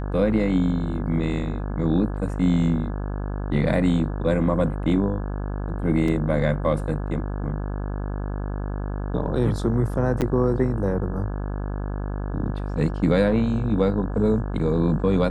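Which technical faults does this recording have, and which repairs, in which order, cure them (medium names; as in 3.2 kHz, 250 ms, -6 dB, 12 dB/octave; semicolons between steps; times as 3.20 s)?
buzz 50 Hz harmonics 34 -28 dBFS
6.08 s: dropout 2.9 ms
10.21–10.22 s: dropout 8.4 ms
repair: de-hum 50 Hz, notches 34; interpolate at 6.08 s, 2.9 ms; interpolate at 10.21 s, 8.4 ms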